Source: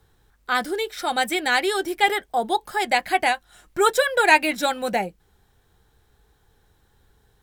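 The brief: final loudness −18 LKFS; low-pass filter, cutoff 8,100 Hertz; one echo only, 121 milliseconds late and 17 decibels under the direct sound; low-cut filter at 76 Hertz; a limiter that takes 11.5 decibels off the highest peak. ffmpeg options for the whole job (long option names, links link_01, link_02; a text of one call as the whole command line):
ffmpeg -i in.wav -af "highpass=76,lowpass=8100,alimiter=limit=-14.5dB:level=0:latency=1,aecho=1:1:121:0.141,volume=7.5dB" out.wav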